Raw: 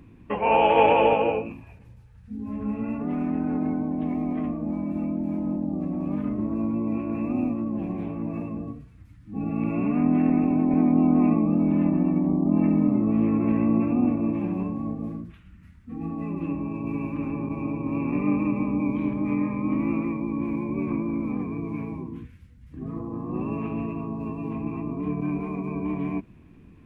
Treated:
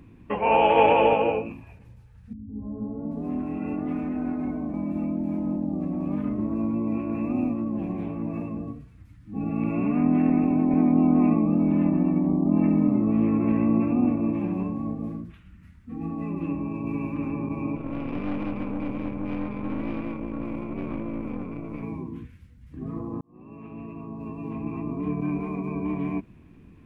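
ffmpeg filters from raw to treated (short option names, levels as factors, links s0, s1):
-filter_complex "[0:a]asettb=1/sr,asplit=3[s0][s1][s2];[s0]atrim=end=2.334[s3];[s1]atrim=start=2.33:end=4.74,asetpts=PTS-STARTPTS,afade=t=in:d=0.004:c=qsin,afade=t=out:st=2.406:d=0.004:c=qsin,acrossover=split=210|850[s4][s5][s6];[s5]adelay=160[s7];[s6]adelay=780[s8];[s4][s7][s8]amix=inputs=3:normalize=0,atrim=end_sample=106281[s9];[s2]atrim=start=4.736[s10];[s3][s9]acrossfade=d=0.004:c1=hsin:c2=qsin[s11];[s11][s10]acrossfade=d=0.004:c1=qsin:c2=hsin,asettb=1/sr,asplit=3[s12][s13][s14];[s12]atrim=end=17.764[s15];[s13]atrim=start=17.76:end=21.83,asetpts=PTS-STARTPTS,afade=t=in:d=0.004:c=qsin,afade=t=out:st=4.066:d=0.004:c=qsin,aeval=exprs='(tanh(17.8*val(0)+0.75)-tanh(0.75))/17.8':c=same[s16];[s14]atrim=start=21.826[s17];[s15][s16]acrossfade=d=0.004:c1=hsin:c2=qsin[s18];[s18][s17]acrossfade=d=0.004:c1=qsin:c2=hsin,asplit=2[s19][s20];[s19]atrim=end=23.21,asetpts=PTS-STARTPTS,afade=t=out:st=23.206:d=0.004:c=hsin[s21];[s20]atrim=start=23.21,asetpts=PTS-STARTPTS,afade=t=in:d=1.7[s22];[s21][s22]concat=n=2:v=0:a=1"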